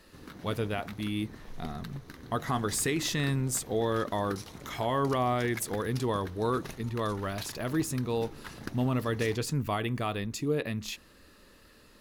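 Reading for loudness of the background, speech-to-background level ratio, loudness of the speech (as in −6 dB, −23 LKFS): −46.0 LKFS, 14.5 dB, −31.5 LKFS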